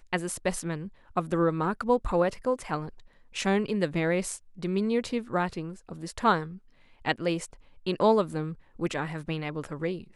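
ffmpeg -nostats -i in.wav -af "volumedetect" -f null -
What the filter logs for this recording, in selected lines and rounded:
mean_volume: -29.3 dB
max_volume: -10.4 dB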